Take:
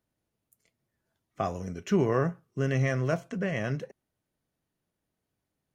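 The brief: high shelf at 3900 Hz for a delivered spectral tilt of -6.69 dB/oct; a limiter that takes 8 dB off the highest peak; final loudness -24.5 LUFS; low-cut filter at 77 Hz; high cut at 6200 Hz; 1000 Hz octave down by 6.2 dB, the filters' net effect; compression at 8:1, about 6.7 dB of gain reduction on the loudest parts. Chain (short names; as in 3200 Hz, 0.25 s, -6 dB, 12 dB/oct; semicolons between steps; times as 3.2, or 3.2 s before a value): HPF 77 Hz; LPF 6200 Hz; bell 1000 Hz -8.5 dB; high shelf 3900 Hz -6 dB; compressor 8:1, threshold -27 dBFS; gain +13.5 dB; limiter -13.5 dBFS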